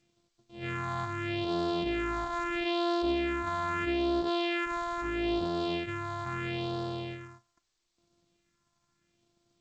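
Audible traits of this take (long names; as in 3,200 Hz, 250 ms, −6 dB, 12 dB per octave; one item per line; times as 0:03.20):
a buzz of ramps at a fixed pitch in blocks of 128 samples
phaser sweep stages 4, 0.77 Hz, lowest notch 440–2,200 Hz
G.722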